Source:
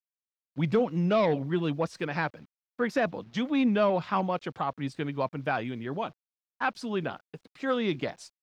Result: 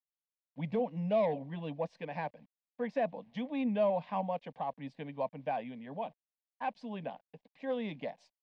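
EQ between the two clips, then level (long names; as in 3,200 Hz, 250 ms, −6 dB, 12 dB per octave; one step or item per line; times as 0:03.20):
low-pass filter 1,900 Hz 12 dB per octave
low-shelf EQ 450 Hz −9 dB
phaser with its sweep stopped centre 360 Hz, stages 6
0.0 dB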